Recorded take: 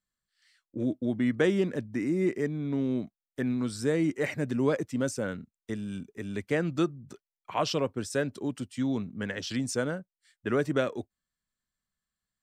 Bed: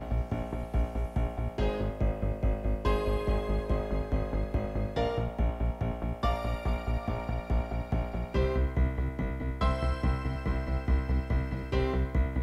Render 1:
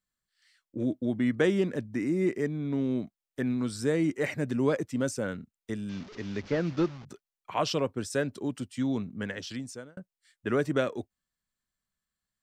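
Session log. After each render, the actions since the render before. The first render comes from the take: 5.89–7.05 s: one-bit delta coder 32 kbps, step -41.5 dBFS; 9.18–9.97 s: fade out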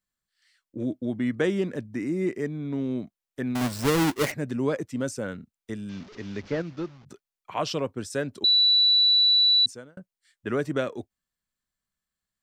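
3.55–4.32 s: square wave that keeps the level; 6.62–7.06 s: gain -6 dB; 8.44–9.66 s: bleep 3.95 kHz -16 dBFS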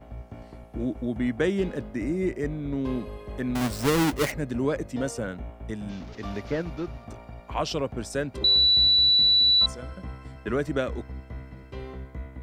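add bed -9.5 dB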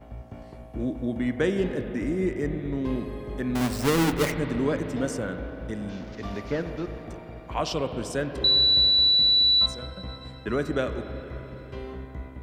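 spring tank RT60 3.8 s, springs 38/42/48 ms, chirp 25 ms, DRR 7.5 dB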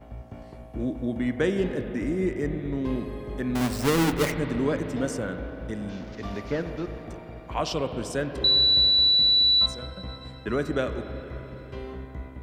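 no audible change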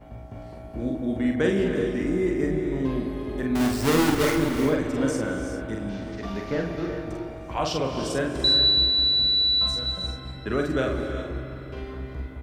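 doubling 45 ms -3.5 dB; gated-style reverb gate 420 ms rising, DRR 7 dB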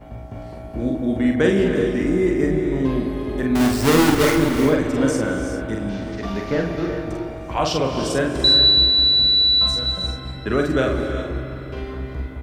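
trim +5.5 dB

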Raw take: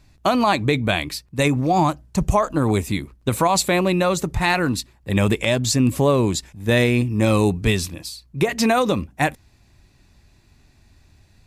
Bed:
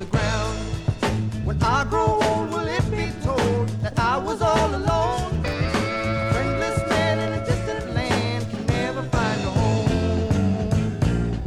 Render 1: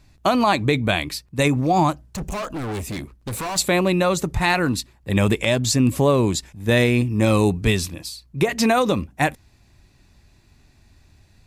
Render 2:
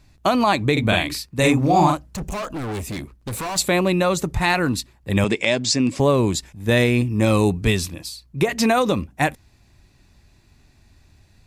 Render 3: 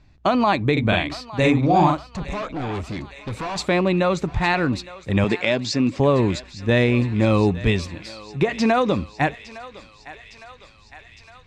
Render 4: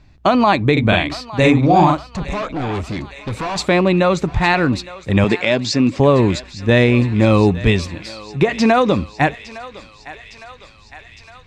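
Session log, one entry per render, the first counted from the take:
2.06–3.58 s: overload inside the chain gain 25.5 dB
0.72–2.18 s: doubling 45 ms -2 dB; 5.24–6.00 s: cabinet simulation 190–7900 Hz, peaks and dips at 1.2 kHz -3 dB, 2.2 kHz +4 dB, 5 kHz +6 dB
distance through air 140 m; thinning echo 860 ms, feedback 73%, high-pass 790 Hz, level -15 dB
trim +5 dB; peak limiter -2 dBFS, peak gain reduction 2 dB

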